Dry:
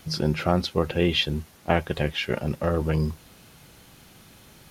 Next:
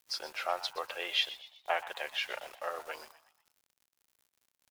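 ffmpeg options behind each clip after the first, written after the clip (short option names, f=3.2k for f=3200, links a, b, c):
-filter_complex "[0:a]highpass=f=660:w=0.5412,highpass=f=660:w=1.3066,aeval=exprs='val(0)*gte(abs(val(0)),0.00596)':c=same,asplit=5[a][b][c][d][e];[b]adelay=123,afreqshift=94,volume=-15.5dB[f];[c]adelay=246,afreqshift=188,volume=-22.6dB[g];[d]adelay=369,afreqshift=282,volume=-29.8dB[h];[e]adelay=492,afreqshift=376,volume=-36.9dB[i];[a][f][g][h][i]amix=inputs=5:normalize=0,volume=-5.5dB"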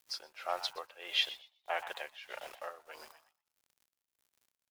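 -af "tremolo=f=1.6:d=0.85"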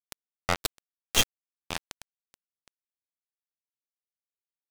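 -af "aeval=exprs='0.126*(cos(1*acos(clip(val(0)/0.126,-1,1)))-cos(1*PI/2))+0.01*(cos(3*acos(clip(val(0)/0.126,-1,1)))-cos(3*PI/2))+0.0501*(cos(4*acos(clip(val(0)/0.126,-1,1)))-cos(4*PI/2))+0.0224*(cos(7*acos(clip(val(0)/0.126,-1,1)))-cos(7*PI/2))':c=same,acrusher=bits=3:mix=0:aa=0.5,acompressor=mode=upward:threshold=-42dB:ratio=2.5,volume=6.5dB"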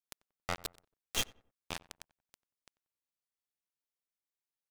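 -filter_complex "[0:a]alimiter=limit=-18dB:level=0:latency=1:release=26,asplit=2[a][b];[b]adelay=92,lowpass=f=1.4k:p=1,volume=-20dB,asplit=2[c][d];[d]adelay=92,lowpass=f=1.4k:p=1,volume=0.37,asplit=2[e][f];[f]adelay=92,lowpass=f=1.4k:p=1,volume=0.37[g];[a][c][e][g]amix=inputs=4:normalize=0,volume=-2dB"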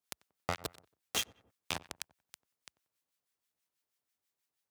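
-filter_complex "[0:a]acrossover=split=1200[a][b];[a]aeval=exprs='val(0)*(1-0.7/2+0.7/2*cos(2*PI*6.2*n/s))':c=same[c];[b]aeval=exprs='val(0)*(1-0.7/2-0.7/2*cos(2*PI*6.2*n/s))':c=same[d];[c][d]amix=inputs=2:normalize=0,highpass=f=64:w=0.5412,highpass=f=64:w=1.3066,acompressor=threshold=-41dB:ratio=6,volume=10.5dB"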